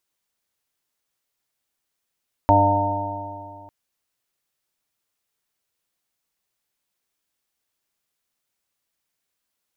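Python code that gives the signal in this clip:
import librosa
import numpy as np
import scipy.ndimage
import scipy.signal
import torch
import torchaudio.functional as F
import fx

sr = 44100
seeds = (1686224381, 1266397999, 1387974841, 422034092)

y = fx.additive_stiff(sr, length_s=1.2, hz=98.2, level_db=-18.0, upper_db=(-16.5, -2, -18.0, -17.5, -0.5, -1, -10, 4.5), decay_s=2.32, stiffness=0.00081)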